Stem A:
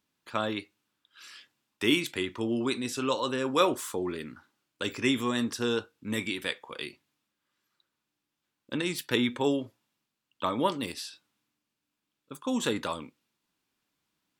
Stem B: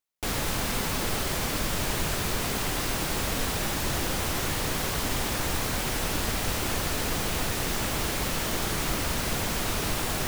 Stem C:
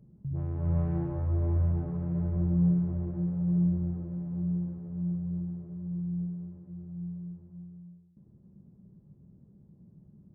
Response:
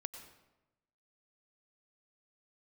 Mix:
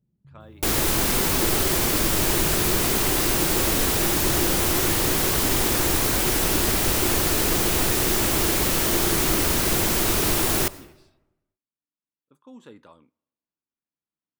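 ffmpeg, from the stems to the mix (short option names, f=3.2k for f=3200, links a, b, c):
-filter_complex "[0:a]lowpass=f=1.2k:p=1,volume=-16dB,asplit=2[a][b];[b]volume=-22.5dB[c];[1:a]equalizer=f=350:t=o:w=0.41:g=9,adelay=400,volume=1.5dB,asplit=2[d][e];[e]volume=-6.5dB[f];[2:a]volume=-16.5dB[g];[3:a]atrim=start_sample=2205[h];[c][f]amix=inputs=2:normalize=0[i];[i][h]afir=irnorm=-1:irlink=0[j];[a][d][g][j]amix=inputs=4:normalize=0,highshelf=f=7.6k:g=8.5"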